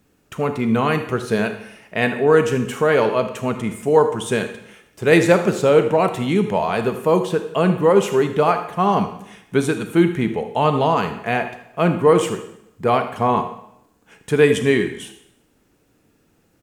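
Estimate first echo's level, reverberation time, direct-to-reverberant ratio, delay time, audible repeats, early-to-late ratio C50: -16.0 dB, 0.75 s, 8.0 dB, 78 ms, 1, 9.0 dB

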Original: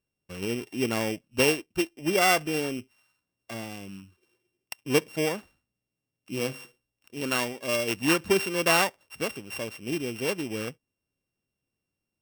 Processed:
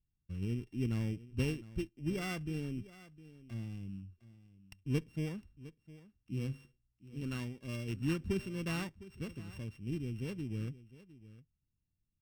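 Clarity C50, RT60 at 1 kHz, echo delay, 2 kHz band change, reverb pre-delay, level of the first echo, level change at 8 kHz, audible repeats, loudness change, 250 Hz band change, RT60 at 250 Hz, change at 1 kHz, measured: no reverb, no reverb, 708 ms, -18.0 dB, no reverb, -17.5 dB, -21.5 dB, 1, -12.0 dB, -7.0 dB, no reverb, -22.0 dB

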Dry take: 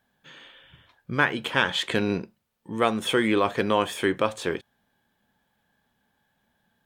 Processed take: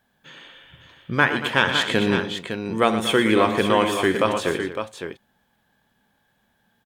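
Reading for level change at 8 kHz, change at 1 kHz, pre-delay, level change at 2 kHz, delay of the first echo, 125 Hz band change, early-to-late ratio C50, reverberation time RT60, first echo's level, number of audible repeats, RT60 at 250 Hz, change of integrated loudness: +4.5 dB, +4.5 dB, no reverb, +4.5 dB, 64 ms, +5.0 dB, no reverb, no reverb, -16.0 dB, 4, no reverb, +4.0 dB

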